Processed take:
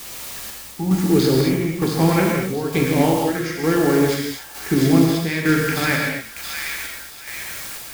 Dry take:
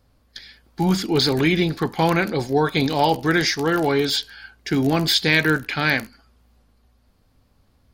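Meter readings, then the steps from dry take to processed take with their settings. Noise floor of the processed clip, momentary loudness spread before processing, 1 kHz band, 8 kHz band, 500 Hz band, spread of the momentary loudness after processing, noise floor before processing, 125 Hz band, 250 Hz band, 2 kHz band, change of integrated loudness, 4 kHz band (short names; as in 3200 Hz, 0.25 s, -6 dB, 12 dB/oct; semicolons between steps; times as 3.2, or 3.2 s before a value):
-38 dBFS, 6 LU, -2.0 dB, +5.0 dB, +2.0 dB, 14 LU, -61 dBFS, +3.5 dB, +4.0 dB, -1.5 dB, +0.5 dB, -5.5 dB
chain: Wiener smoothing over 15 samples; in parallel at -1.5 dB: compressor, threshold -29 dBFS, peak gain reduction 15 dB; on the sum: bell 4100 Hz -11 dB 0.99 oct; on a send: thin delay 0.676 s, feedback 65%, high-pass 2100 Hz, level -5.5 dB; on the sum: requantised 6-bit, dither triangular; chopper 1.1 Hz, depth 60%, duty 55%; dynamic EQ 830 Hz, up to -7 dB, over -36 dBFS, Q 1.7; notch 1500 Hz, Q 19; non-linear reverb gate 0.27 s flat, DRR -1 dB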